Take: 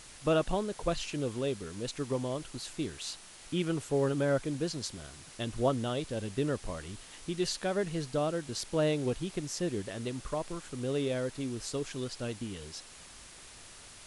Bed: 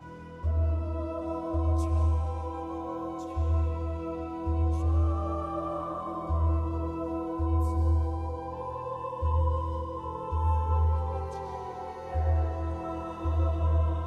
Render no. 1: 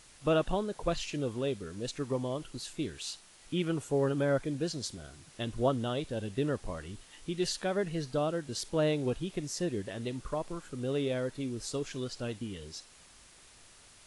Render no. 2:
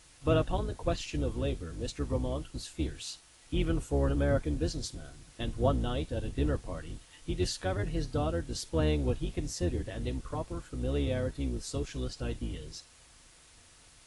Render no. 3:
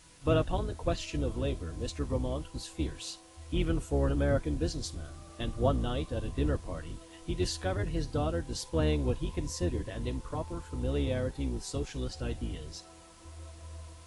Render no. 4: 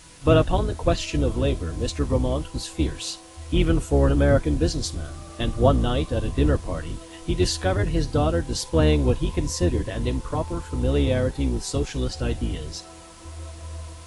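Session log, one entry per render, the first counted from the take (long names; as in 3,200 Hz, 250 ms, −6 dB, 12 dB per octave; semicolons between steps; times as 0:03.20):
noise reduction from a noise print 6 dB
sub-octave generator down 2 octaves, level +3 dB; notch comb filter 200 Hz
mix in bed −20.5 dB
level +9.5 dB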